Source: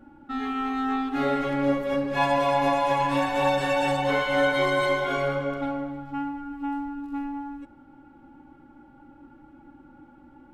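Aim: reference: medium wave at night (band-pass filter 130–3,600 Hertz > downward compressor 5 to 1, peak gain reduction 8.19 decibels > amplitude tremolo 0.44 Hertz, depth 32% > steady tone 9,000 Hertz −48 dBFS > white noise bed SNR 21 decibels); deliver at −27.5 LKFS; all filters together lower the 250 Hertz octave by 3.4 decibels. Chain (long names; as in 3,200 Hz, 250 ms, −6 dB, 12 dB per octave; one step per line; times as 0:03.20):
band-pass filter 130–3,600 Hz
parametric band 250 Hz −3.5 dB
downward compressor 5 to 1, threshold −27 dBFS
amplitude tremolo 0.44 Hz, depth 32%
steady tone 9,000 Hz −48 dBFS
white noise bed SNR 21 dB
level +5 dB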